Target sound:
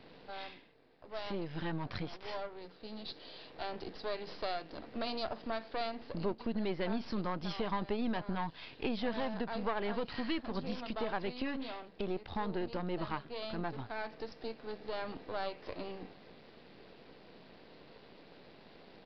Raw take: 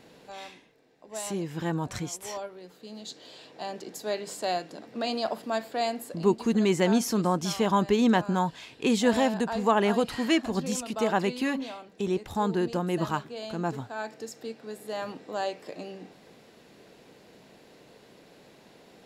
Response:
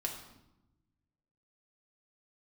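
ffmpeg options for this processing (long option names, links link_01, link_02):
-af "aeval=exprs='if(lt(val(0),0),0.251*val(0),val(0))':channel_layout=same,aresample=11025,aresample=44100,acompressor=threshold=-36dB:ratio=2.5,volume=1dB"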